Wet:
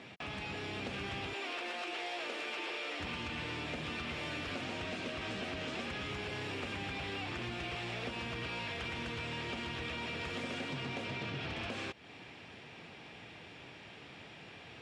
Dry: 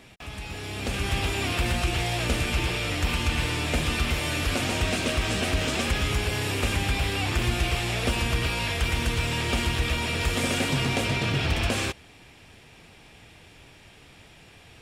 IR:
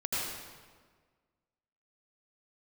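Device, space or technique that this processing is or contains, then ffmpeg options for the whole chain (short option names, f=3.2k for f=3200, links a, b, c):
AM radio: -filter_complex "[0:a]asettb=1/sr,asplit=3[a][b][c];[a]atrim=end=1.334[d];[b]atrim=start=1.33:end=3,asetpts=PTS-STARTPTS,afade=t=in:d=0.004:c=qsin,afade=t=out:st=1.666:d=0.004:c=qsin,highpass=f=340:w=0.5412,highpass=f=340:w=1.3066[e];[c]atrim=start=2.996[f];[d][e]acrossfade=d=0.004:c1=hsin:c2=qsin[g];[g][f]acrossfade=d=0.004:c1=qsin:c2=hsin,highpass=140,lowpass=4.1k,acompressor=threshold=-38dB:ratio=6,asoftclip=type=tanh:threshold=-30dB,volume=1dB"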